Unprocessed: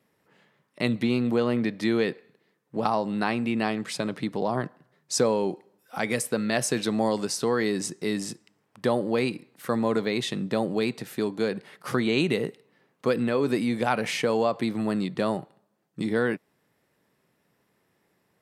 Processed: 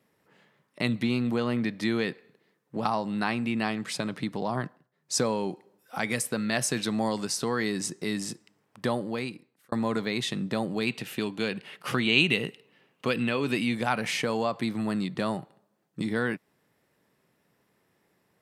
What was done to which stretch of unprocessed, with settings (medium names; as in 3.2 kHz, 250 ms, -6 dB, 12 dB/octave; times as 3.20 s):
4.65–5.17 s: dip -16 dB, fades 0.26 s
8.89–9.72 s: fade out
10.87–13.75 s: peaking EQ 2.8 kHz +11.5 dB 0.52 oct
whole clip: dynamic bell 460 Hz, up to -6 dB, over -36 dBFS, Q 0.97